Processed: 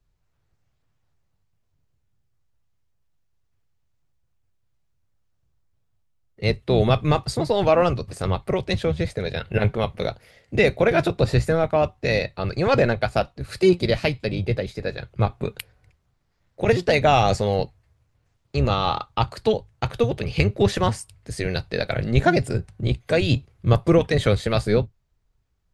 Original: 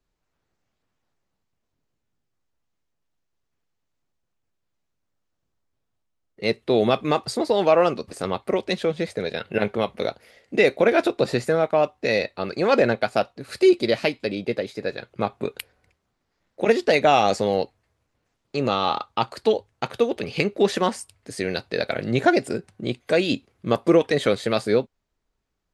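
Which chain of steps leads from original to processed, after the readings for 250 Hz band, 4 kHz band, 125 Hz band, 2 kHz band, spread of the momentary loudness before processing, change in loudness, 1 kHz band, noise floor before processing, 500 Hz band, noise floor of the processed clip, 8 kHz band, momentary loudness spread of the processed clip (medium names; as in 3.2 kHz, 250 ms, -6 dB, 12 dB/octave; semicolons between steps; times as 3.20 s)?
0.0 dB, 0.0 dB, +11.0 dB, 0.0 dB, 11 LU, +0.5 dB, -0.5 dB, -78 dBFS, -1.0 dB, -70 dBFS, 0.0 dB, 10 LU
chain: octave divider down 1 oct, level -6 dB; resonant low shelf 170 Hz +8.5 dB, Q 1.5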